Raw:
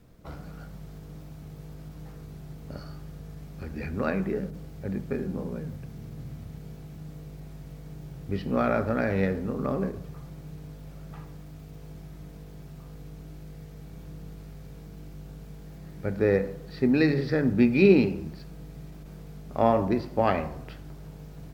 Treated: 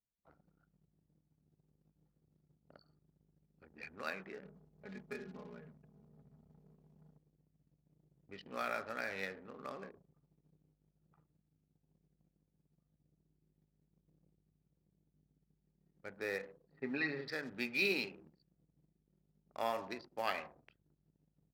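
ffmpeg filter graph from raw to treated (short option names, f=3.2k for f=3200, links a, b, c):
-filter_complex "[0:a]asettb=1/sr,asplit=3[a][b][c];[a]atrim=end=4.454[d];[b]atrim=start=4.45:end=7.18,asetpts=PTS-STARTPTS,afade=t=in:d=0.004:c=qsin,afade=t=out:st=2.726:d=0.004:c=qsin,equalizer=f=86:w=1:g=9,aecho=1:1:4.8:0.88,atrim=end_sample=120393[e];[c]atrim=start=7.176[f];[d][e]acrossfade=d=0.004:c1=hsin:c2=qsin[g];[g][f]acrossfade=d=0.004:c1=qsin:c2=hsin,asettb=1/sr,asplit=3[h][i][j];[h]atrim=end=16.714[k];[i]atrim=start=16.71:end=17.28,asetpts=PTS-STARTPTS,afade=t=in:d=0.004:c=qsin,afade=t=out:st=0.566:d=0.004:c=qsin,lowpass=1.9k,aecho=1:1:7.3:0.88,atrim=end_sample=25137,acompressor=mode=upward:threshold=-38dB:ratio=2.5:attack=3.2:release=140:knee=2.83:detection=peak[l];[j]atrim=start=17.276[m];[k][l]acrossfade=d=0.004:c1=hsin:c2=qsin[n];[n][m]acrossfade=d=0.004:c1=qsin:c2=hsin,anlmdn=2.51,aderivative,volume=5.5dB"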